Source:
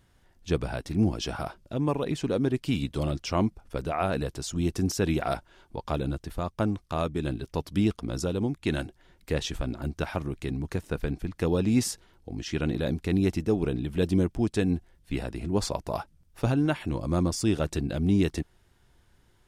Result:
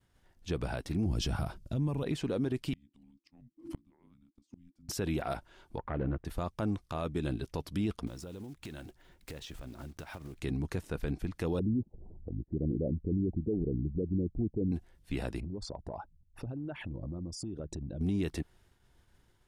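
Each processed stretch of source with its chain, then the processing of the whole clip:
0:01.06–0:02.03: noise gate −55 dBFS, range −6 dB + bass and treble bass +13 dB, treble +7 dB
0:02.73–0:04.89: low-shelf EQ 340 Hz +11.5 dB + frequency shifter −350 Hz + gate with flip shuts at −21 dBFS, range −39 dB
0:05.78–0:06.25: phase distortion by the signal itself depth 0.26 ms + low-pass filter 2,000 Hz 24 dB per octave
0:08.07–0:10.40: one scale factor per block 5 bits + downward compressor 12 to 1, threshold −38 dBFS
0:11.59–0:14.72: spectral envelope exaggerated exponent 2 + Butterworth low-pass 790 Hz 48 dB per octave + upward compression, threshold −33 dBFS
0:15.40–0:18.01: spectral envelope exaggerated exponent 2 + downward compressor 12 to 1, threshold −33 dBFS
whole clip: downward expander −58 dBFS; dynamic equaliser 6,400 Hz, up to −5 dB, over −50 dBFS, Q 1.4; brickwall limiter −22 dBFS; level −2 dB

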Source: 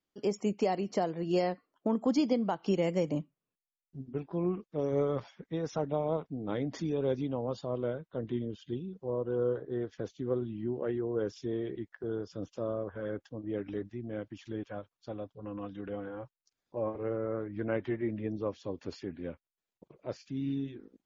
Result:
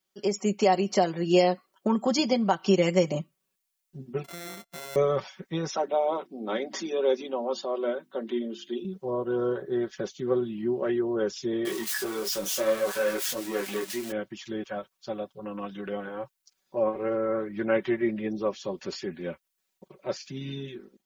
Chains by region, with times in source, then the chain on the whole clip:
0:04.24–0:04.96: samples sorted by size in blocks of 64 samples + downward compressor, threshold −46 dBFS
0:05.69–0:08.85: elliptic high-pass filter 220 Hz, stop band 50 dB + mains-hum notches 50/100/150/200/250/300/350 Hz
0:11.65–0:14.12: spike at every zero crossing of −34.5 dBFS + mid-hump overdrive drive 19 dB, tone 4,300 Hz, clips at −22.5 dBFS + micro pitch shift up and down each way 21 cents
whole clip: spectral tilt +2 dB per octave; comb filter 5.3 ms, depth 74%; automatic gain control gain up to 4 dB; level +2.5 dB

